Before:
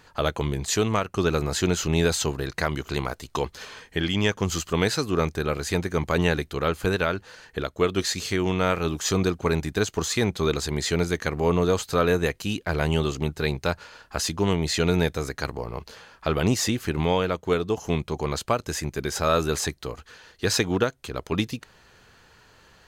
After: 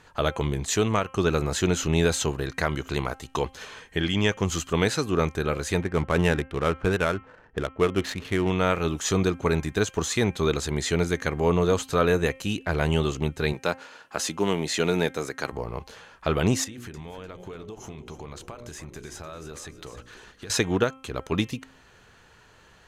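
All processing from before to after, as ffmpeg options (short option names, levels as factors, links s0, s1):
-filter_complex "[0:a]asettb=1/sr,asplit=3[s0][s1][s2];[s0]atrim=end=5.824[s3];[s1]atrim=start=5.82:end=8.5,asetpts=PTS-STARTPTS,afade=t=in:d=0.004:c=qsin,afade=t=out:st=2.676:d=0.004:c=qsin,bass=f=250:g=1,treble=f=4000:g=-6,adynamicsmooth=sensitivity=7.5:basefreq=700[s4];[s2]atrim=start=8.496[s5];[s3][s4]acrossfade=d=0.004:c1=hsin:c2=qsin[s6];[s6][s5]acrossfade=d=0.004:c1=qsin:c2=hsin,asettb=1/sr,asplit=3[s7][s8][s9];[s7]atrim=end=13.534[s10];[s8]atrim=start=13.53:end=15.52,asetpts=PTS-STARTPTS,afade=t=in:d=0.004:c=qsin,afade=t=out:st=1.986:d=0.004:c=qsin,highpass=190,acrusher=bits=8:mode=log:mix=0:aa=0.000001[s11];[s9]atrim=start=15.516[s12];[s10][s11]acrossfade=d=0.004:c1=hsin:c2=qsin[s13];[s13][s12]acrossfade=d=0.004:c1=qsin:c2=hsin,asettb=1/sr,asplit=3[s14][s15][s16];[s14]atrim=end=16.644[s17];[s15]atrim=start=16.64:end=20.5,asetpts=PTS-STARTPTS,afade=t=in:d=0.004:c=qsin,afade=t=out:st=3.856:d=0.004:c=qsin,bandreject=f=60:t=h:w=6,bandreject=f=120:t=h:w=6,bandreject=f=180:t=h:w=6,bandreject=f=240:t=h:w=6,bandreject=f=300:t=h:w=6,bandreject=f=360:t=h:w=6,bandreject=f=420:t=h:w=6,bandreject=f=480:t=h:w=6,bandreject=f=540:t=h:w=6,bandreject=f=600:t=h:w=6,acompressor=threshold=0.0178:ratio=16:attack=3.2:release=140:knee=1:detection=peak,asplit=4[s18][s19][s20][s21];[s19]adelay=299,afreqshift=-64,volume=0.266[s22];[s20]adelay=598,afreqshift=-128,volume=0.0881[s23];[s21]adelay=897,afreqshift=-192,volume=0.0288[s24];[s18][s22][s23][s24]amix=inputs=4:normalize=0,atrim=end_sample=170226[s25];[s16]atrim=start=20.496[s26];[s17][s25]acrossfade=d=0.004:c1=hsin:c2=qsin[s27];[s27][s26]acrossfade=d=0.004:c1=qsin:c2=hsin,lowpass=12000,equalizer=f=4700:t=o:w=0.31:g=-6,bandreject=f=264.5:t=h:w=4,bandreject=f=529:t=h:w=4,bandreject=f=793.5:t=h:w=4,bandreject=f=1058:t=h:w=4,bandreject=f=1322.5:t=h:w=4,bandreject=f=1587:t=h:w=4,bandreject=f=1851.5:t=h:w=4,bandreject=f=2116:t=h:w=4,bandreject=f=2380.5:t=h:w=4,bandreject=f=2645:t=h:w=4,bandreject=f=2909.5:t=h:w=4,bandreject=f=3174:t=h:w=4"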